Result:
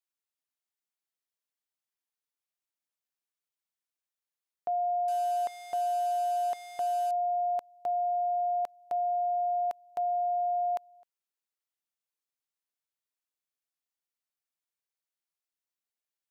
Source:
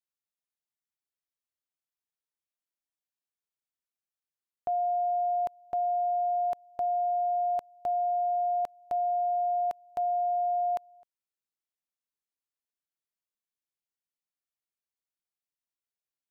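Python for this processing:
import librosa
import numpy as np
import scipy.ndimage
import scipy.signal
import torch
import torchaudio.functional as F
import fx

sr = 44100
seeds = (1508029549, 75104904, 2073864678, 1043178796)

y = fx.delta_mod(x, sr, bps=64000, step_db=-38.0, at=(5.08, 7.11))
y = fx.highpass(y, sr, hz=390.0, slope=6)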